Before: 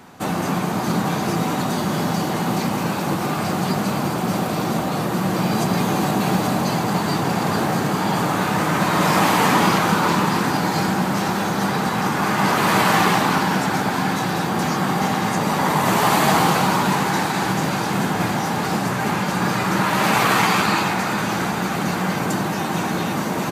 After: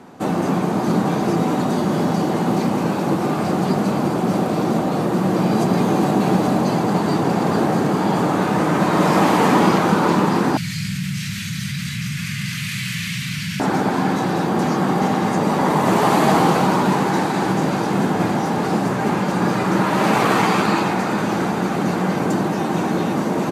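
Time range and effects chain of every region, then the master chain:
0:10.57–0:13.60: elliptic band-stop filter 140–2,200 Hz, stop band 70 dB + flutter between parallel walls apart 8.2 metres, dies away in 0.3 s + envelope flattener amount 70%
whole clip: low-pass filter 12,000 Hz 12 dB per octave; parametric band 350 Hz +10 dB 2.7 octaves; level −4.5 dB

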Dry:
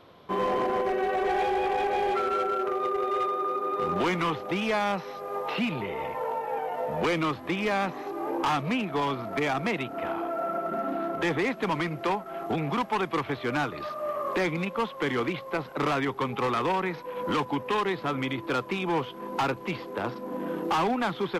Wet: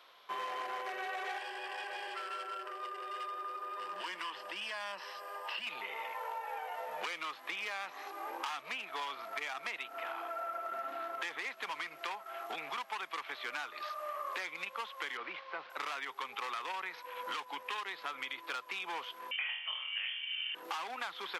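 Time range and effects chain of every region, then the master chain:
0:01.38–0:05.67: EQ curve with evenly spaced ripples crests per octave 1.3, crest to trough 10 dB + downward compressor 2.5 to 1, threshold −32 dBFS
0:15.17–0:15.70: linear delta modulator 32 kbit/s, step −37.5 dBFS + high-frequency loss of the air 400 metres
0:19.31–0:20.55: flutter between parallel walls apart 4.2 metres, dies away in 0.47 s + voice inversion scrambler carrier 3,300 Hz
whole clip: Bessel high-pass filter 1,500 Hz, order 2; downward compressor, threshold −37 dBFS; level +1 dB

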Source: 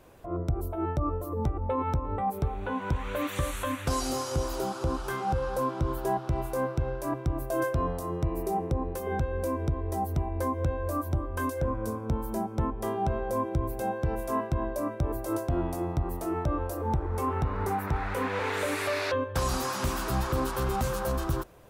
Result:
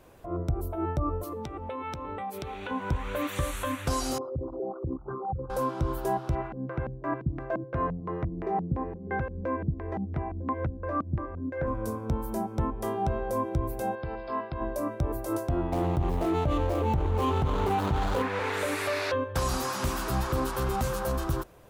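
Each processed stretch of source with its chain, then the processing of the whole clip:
0:01.23–0:02.71: meter weighting curve D + downward compressor 5 to 1, threshold −32 dBFS
0:04.18–0:05.50: spectral envelope exaggerated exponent 3 + high-pass filter 91 Hz + head-to-tape spacing loss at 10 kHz 44 dB
0:06.35–0:11.67: high-pass filter 110 Hz 6 dB per octave + auto-filter low-pass square 2.9 Hz 200–1,900 Hz + high-frequency loss of the air 59 metres
0:13.95–0:14.61: linear-phase brick-wall low-pass 5,200 Hz + low-shelf EQ 470 Hz −8.5 dB
0:15.72–0:18.22: running median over 25 samples + mains-hum notches 50/100/150/200/250/300/350/400/450/500 Hz + envelope flattener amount 70%
whole clip: no processing

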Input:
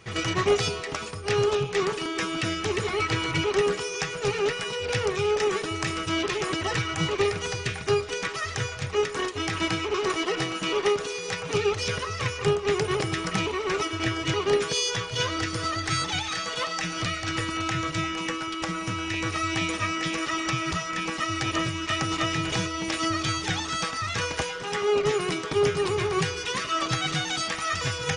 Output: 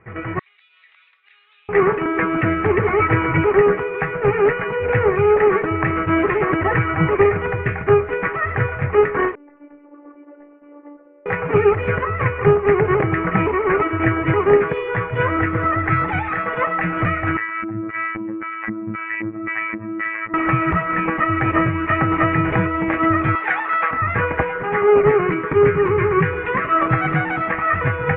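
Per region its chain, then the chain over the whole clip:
0:00.39–0:01.69: spectral tilt +4 dB per octave + downward compressor 10 to 1, threshold −28 dBFS + four-pole ladder band-pass 3,900 Hz, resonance 85%
0:09.35–0:11.26: low-pass with resonance 480 Hz, resonance Q 2 + first difference + phases set to zero 291 Hz
0:17.37–0:20.34: comb filter 6.1 ms, depth 55% + auto-filter band-pass square 1.9 Hz 220–2,000 Hz + phases set to zero 109 Hz
0:23.35–0:23.91: high-pass filter 550 Hz + tilt shelving filter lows −4 dB, about 710 Hz
0:25.27–0:26.33: elliptic low-pass filter 4,700 Hz + parametric band 710 Hz −14.5 dB 0.27 octaves
whole clip: Butterworth low-pass 2,200 Hz 48 dB per octave; automatic gain control gain up to 11 dB

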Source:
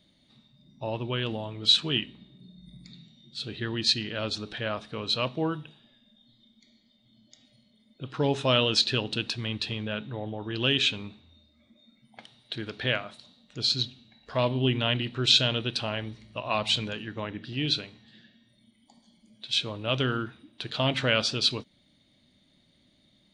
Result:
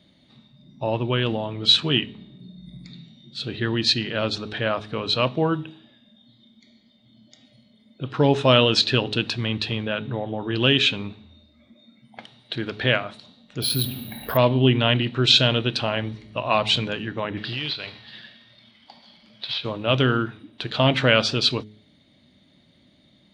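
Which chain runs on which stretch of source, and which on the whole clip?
0:13.62–0:14.37: high-frequency loss of the air 150 metres + bad sample-rate conversion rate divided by 3×, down filtered, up zero stuff + envelope flattener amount 50%
0:17.37–0:19.65: variable-slope delta modulation 64 kbit/s + drawn EQ curve 120 Hz 0 dB, 250 Hz −6 dB, 570 Hz +4 dB, 4,800 Hz +11 dB, 6,900 Hz −11 dB + downward compressor 5 to 1, threshold −31 dBFS
whole clip: high-pass filter 59 Hz; high-shelf EQ 5,500 Hz −12 dB; hum removal 105.9 Hz, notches 4; level +8 dB

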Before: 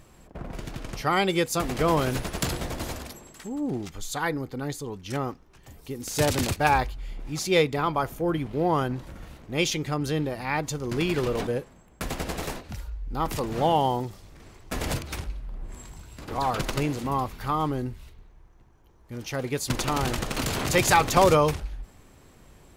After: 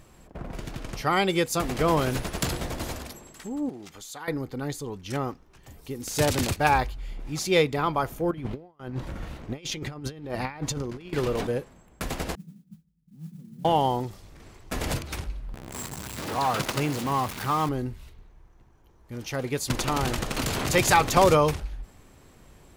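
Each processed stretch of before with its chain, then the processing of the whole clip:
0:03.69–0:04.28: high-pass filter 280 Hz 6 dB per octave + downward compressor 2.5 to 1, threshold −40 dBFS
0:08.31–0:11.13: high-shelf EQ 6,600 Hz −8 dB + compressor whose output falls as the input rises −33 dBFS, ratio −0.5 + noise gate with hold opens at −37 dBFS, closes at −39 dBFS
0:12.35–0:13.65: flat-topped band-pass 180 Hz, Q 4 + noise that follows the level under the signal 25 dB
0:15.54–0:17.69: converter with a step at zero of −29.5 dBFS + high-pass filter 110 Hz + dynamic equaliser 340 Hz, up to −3 dB, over −35 dBFS, Q 0.92
whole clip: no processing

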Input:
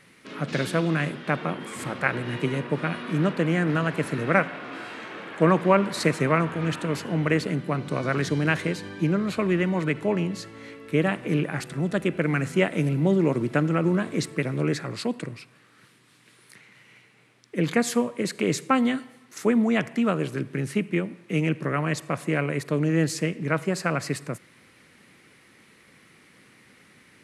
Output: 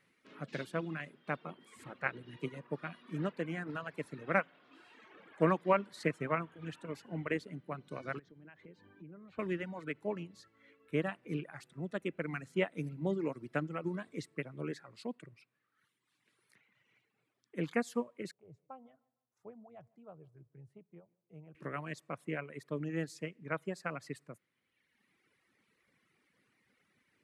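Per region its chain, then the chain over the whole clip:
0:08.19–0:09.39: downward compressor 3 to 1, threshold −32 dBFS + head-to-tape spacing loss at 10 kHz 25 dB
0:18.31–0:21.55: drawn EQ curve 110 Hz 0 dB, 250 Hz −19 dB, 750 Hz −5 dB, 1,800 Hz −26 dB + feedback echo with a high-pass in the loop 152 ms, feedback 38%, high-pass 190 Hz, level −17 dB
whole clip: reverb reduction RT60 1.5 s; bass and treble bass −2 dB, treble −4 dB; expander for the loud parts 1.5 to 1, over −33 dBFS; level −7.5 dB

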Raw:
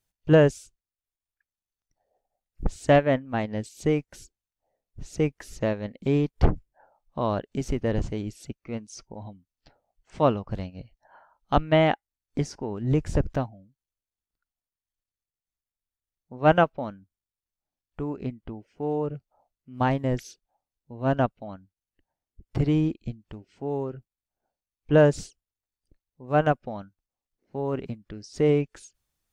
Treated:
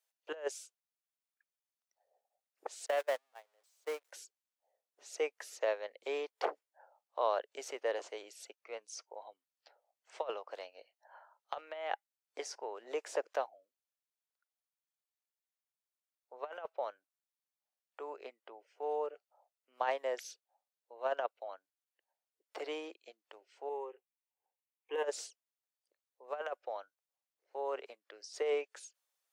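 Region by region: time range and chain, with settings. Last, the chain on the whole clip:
0:02.86–0:04.11: converter with a step at zero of −24.5 dBFS + noise gate −19 dBFS, range −40 dB + downward compressor 4 to 1, threshold −23 dBFS
0:23.69–0:25.04: hard clipping −9 dBFS + phaser with its sweep stopped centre 940 Hz, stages 8
whole clip: Butterworth high-pass 470 Hz 36 dB per octave; compressor whose output falls as the input rises −26 dBFS, ratio −0.5; level −6.5 dB

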